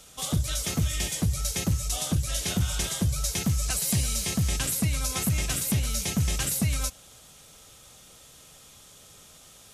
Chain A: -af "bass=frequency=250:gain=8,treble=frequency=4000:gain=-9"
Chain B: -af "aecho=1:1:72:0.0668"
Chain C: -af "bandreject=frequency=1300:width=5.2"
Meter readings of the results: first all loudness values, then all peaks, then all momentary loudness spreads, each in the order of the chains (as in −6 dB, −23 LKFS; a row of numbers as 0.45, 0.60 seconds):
−23.0, −27.0, −27.0 LKFS; −9.5, −16.0, −16.0 dBFS; 2, 2, 2 LU